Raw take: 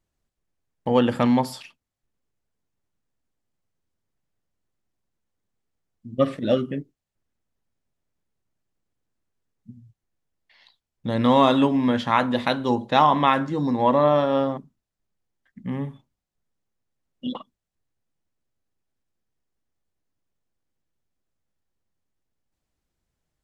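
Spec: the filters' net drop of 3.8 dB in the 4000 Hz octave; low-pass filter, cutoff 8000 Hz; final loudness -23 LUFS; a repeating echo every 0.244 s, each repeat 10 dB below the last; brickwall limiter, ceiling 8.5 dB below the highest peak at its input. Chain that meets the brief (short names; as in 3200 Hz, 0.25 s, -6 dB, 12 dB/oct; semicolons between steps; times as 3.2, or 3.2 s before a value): LPF 8000 Hz; bell 4000 Hz -4.5 dB; limiter -13 dBFS; feedback echo 0.244 s, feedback 32%, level -10 dB; gain +2 dB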